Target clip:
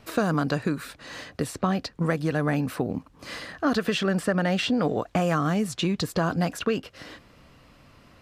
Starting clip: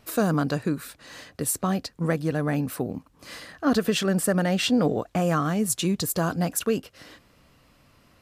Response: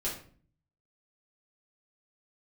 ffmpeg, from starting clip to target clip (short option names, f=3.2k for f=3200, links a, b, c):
-filter_complex "[0:a]highshelf=f=8k:g=-11,acrossover=split=840|5100[a][b][c];[a]acompressor=threshold=-28dB:ratio=4[d];[b]acompressor=threshold=-32dB:ratio=4[e];[c]acompressor=threshold=-50dB:ratio=4[f];[d][e][f]amix=inputs=3:normalize=0,volume=5dB"